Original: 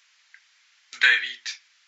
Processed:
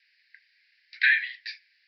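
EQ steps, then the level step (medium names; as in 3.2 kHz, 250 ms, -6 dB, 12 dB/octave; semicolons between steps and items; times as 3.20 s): steep high-pass 1.6 kHz 96 dB/octave; steep low-pass 5 kHz 96 dB/octave; peaking EQ 3.3 kHz -13 dB 0.48 oct; 0.0 dB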